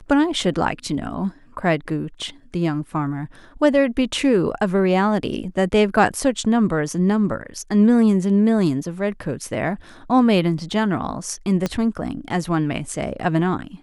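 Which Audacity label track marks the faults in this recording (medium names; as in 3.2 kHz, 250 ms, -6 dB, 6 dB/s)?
11.660000	11.660000	pop -9 dBFS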